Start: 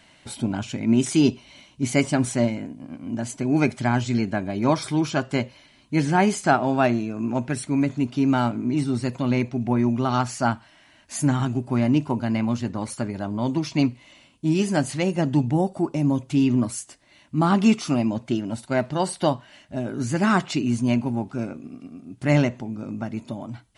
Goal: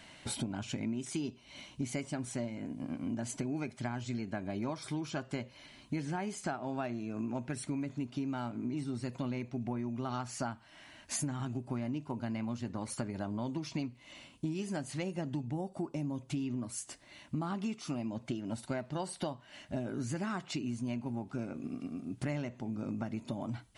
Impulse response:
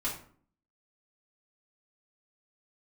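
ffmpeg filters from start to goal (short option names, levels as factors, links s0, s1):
-af "acompressor=threshold=0.0224:ratio=16"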